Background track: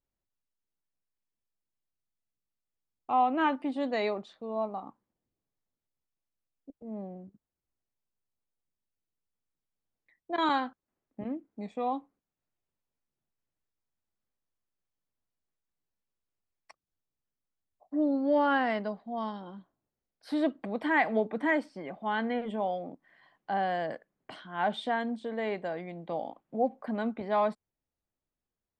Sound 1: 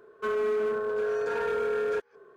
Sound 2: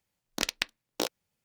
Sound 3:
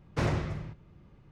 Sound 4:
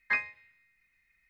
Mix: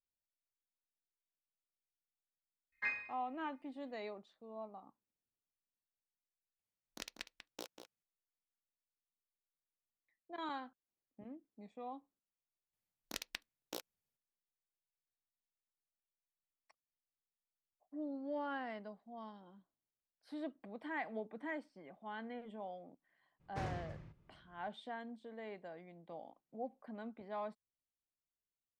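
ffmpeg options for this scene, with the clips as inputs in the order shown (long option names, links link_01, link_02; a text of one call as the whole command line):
ffmpeg -i bed.wav -i cue0.wav -i cue1.wav -i cue2.wav -i cue3.wav -filter_complex "[2:a]asplit=2[link_01][link_02];[0:a]volume=-15.5dB[link_03];[4:a]aecho=1:1:30|64.5|104.2|149.8|202.3|262.6:0.631|0.398|0.251|0.158|0.1|0.0631[link_04];[link_01]asplit=2[link_05][link_06];[link_06]adelay=192.4,volume=-8dB,highshelf=frequency=4000:gain=-4.33[link_07];[link_05][link_07]amix=inputs=2:normalize=0[link_08];[link_02]equalizer=frequency=13000:width=1.4:gain=7[link_09];[link_03]asplit=2[link_10][link_11];[link_10]atrim=end=6.594[link_12];[link_08]atrim=end=1.44,asetpts=PTS-STARTPTS,volume=-18dB[link_13];[link_11]atrim=start=8.026[link_14];[link_04]atrim=end=1.29,asetpts=PTS-STARTPTS,volume=-12dB,afade=type=in:duration=0.004:curve=hsin,afade=type=out:start_time=1.286:duration=0.004:curve=hsin,adelay=2720[link_15];[link_09]atrim=end=1.44,asetpts=PTS-STARTPTS,volume=-15dB,afade=type=in:duration=0.004:curve=hsin,afade=type=out:start_time=1.436:duration=0.004:curve=hsin,adelay=12730[link_16];[3:a]atrim=end=1.31,asetpts=PTS-STARTPTS,volume=-14dB,afade=type=in:duration=0.02,afade=type=out:start_time=1.29:duration=0.02,adelay=23390[link_17];[link_12][link_13]acrossfade=duration=0.004:curve1=hsin:curve2=hsin[link_18];[link_18][link_14]acrossfade=duration=0.004:curve1=hsin:curve2=hsin[link_19];[link_19][link_15][link_16][link_17]amix=inputs=4:normalize=0" out.wav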